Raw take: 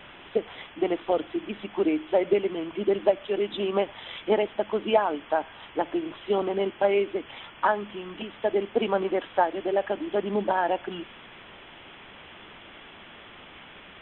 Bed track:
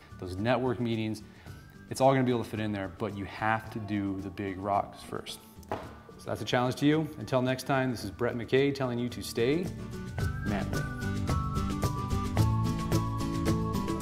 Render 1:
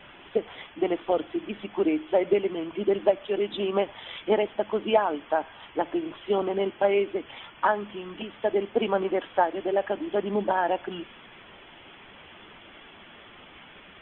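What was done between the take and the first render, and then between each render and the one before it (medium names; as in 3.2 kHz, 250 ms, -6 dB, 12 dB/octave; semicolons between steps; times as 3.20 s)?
noise reduction 6 dB, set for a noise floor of -48 dBFS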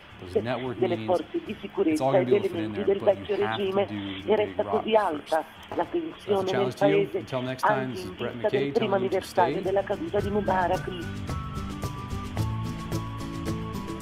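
add bed track -2.5 dB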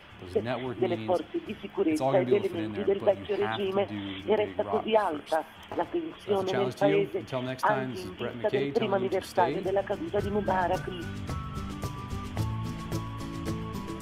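trim -2.5 dB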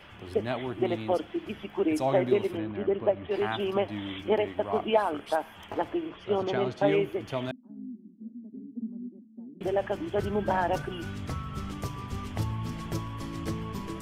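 2.57–3.31 s: distance through air 360 m; 6.09–6.87 s: distance through air 91 m; 7.51–9.61 s: Butterworth band-pass 230 Hz, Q 4.5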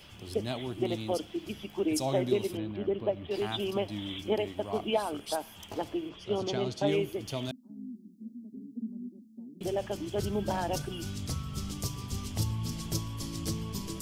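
FFT filter 150 Hz 0 dB, 1.8 kHz -9 dB, 4.9 kHz +10 dB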